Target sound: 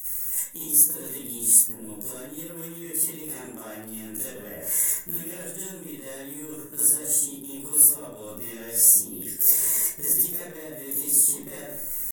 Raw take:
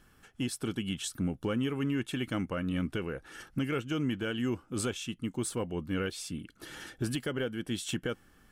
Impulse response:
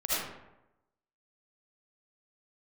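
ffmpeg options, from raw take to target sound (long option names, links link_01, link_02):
-filter_complex "[0:a]acrossover=split=130|1100[link_01][link_02][link_03];[link_01]acompressor=threshold=-53dB:ratio=4[link_04];[link_02]acompressor=threshold=-38dB:ratio=4[link_05];[link_03]acompressor=threshold=-51dB:ratio=4[link_06];[link_04][link_05][link_06]amix=inputs=3:normalize=0,atempo=0.58,crystalizer=i=1:c=0,asetrate=53361,aresample=44100,asplit=2[link_07][link_08];[link_08]acrusher=bits=4:mix=0:aa=0.5,volume=-8.5dB[link_09];[link_07][link_09]amix=inputs=2:normalize=0[link_10];[1:a]atrim=start_sample=2205,asetrate=66150,aresample=44100[link_11];[link_10][link_11]afir=irnorm=-1:irlink=0,areverse,acompressor=threshold=-42dB:ratio=6,areverse,aexciter=amount=15.4:drive=8.8:freq=6500,volume=5dB"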